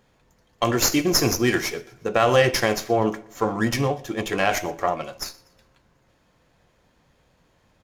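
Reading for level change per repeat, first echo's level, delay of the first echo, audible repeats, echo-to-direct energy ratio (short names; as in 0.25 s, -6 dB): -6.5 dB, -24.0 dB, 0.121 s, 2, -23.0 dB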